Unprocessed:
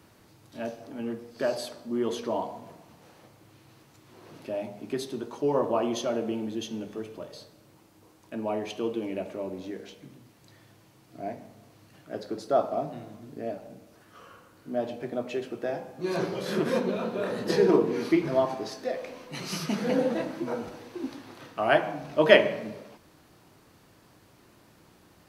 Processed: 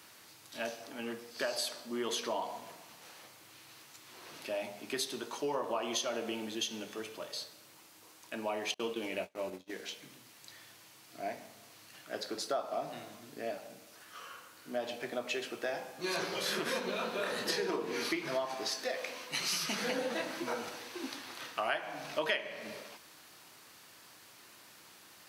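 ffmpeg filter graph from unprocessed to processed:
ffmpeg -i in.wav -filter_complex "[0:a]asettb=1/sr,asplit=3[link_01][link_02][link_03];[link_01]atrim=end=8.744[link_04];[link_02]atrim=start=8.74:end=9.7,asetpts=PTS-STARTPTS,afade=type=in:duration=0.004:curve=qsin,afade=type=out:start_time=0.956:duration=0.004:curve=qsin,agate=range=-32dB:threshold=-37dB:ratio=16:release=100:detection=peak,lowshelf=frequency=79:gain=9,asplit=2[link_05][link_06];[link_06]adelay=22,volume=-10dB[link_07];[link_05][link_07]amix=inputs=2:normalize=0,atrim=end_sample=42336[link_08];[link_03]atrim=start=9.696[link_09];[link_04][link_08]acrossfade=duration=0.004:curve1=hsin:curve2=qsin[link_10];[link_10][link_09]acrossfade=duration=0.004:curve1=qsin:curve2=hsin,highpass=frequency=160:poles=1,tiltshelf=frequency=890:gain=-8.5,acompressor=threshold=-31dB:ratio=6" out.wav

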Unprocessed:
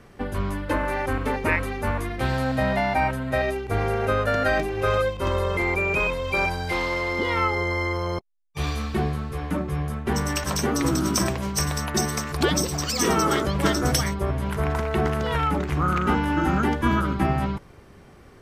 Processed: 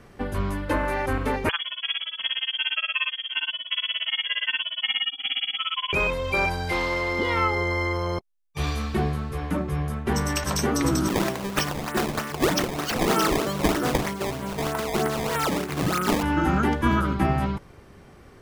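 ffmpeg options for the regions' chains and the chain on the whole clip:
ffmpeg -i in.wav -filter_complex "[0:a]asettb=1/sr,asplit=3[link_01][link_02][link_03];[link_01]atrim=end=1.494[link_04];[link_02]atrim=start=1.49:end=5.93,asetpts=PTS-STARTPTS,afade=type=in:duration=0.004:curve=qsin,afade=type=out:start_time=4.436:duration=0.004:curve=qsin,aemphasis=mode=reproduction:type=75kf,tremolo=f=17:d=0.99,lowpass=frequency=2900:width_type=q:width=0.5098,lowpass=frequency=2900:width_type=q:width=0.6013,lowpass=frequency=2900:width_type=q:width=0.9,lowpass=frequency=2900:width_type=q:width=2.563,afreqshift=-3400[link_05];[link_03]atrim=start=5.926[link_06];[link_04][link_05]acrossfade=duration=0.004:curve1=hsin:curve2=qsin[link_07];[link_07][link_06]acrossfade=duration=0.004:curve1=qsin:curve2=hsin,asettb=1/sr,asplit=3[link_08][link_09][link_10];[link_08]atrim=end=11.084[link_11];[link_09]atrim=start=11.08:end=16.23,asetpts=PTS-STARTPTS,afade=type=in:duration=0.004:curve=qsin,afade=type=out:start_time=5.146:duration=0.004:curve=qsin,highpass=180,acrusher=samples=18:mix=1:aa=0.000001:lfo=1:lforange=28.8:lforate=3.2[link_12];[link_10]atrim=start=16.226[link_13];[link_11][link_12]acrossfade=duration=0.004:curve1=hsin:curve2=qsin[link_14];[link_14][link_13]acrossfade=duration=0.004:curve1=qsin:curve2=hsin" out.wav

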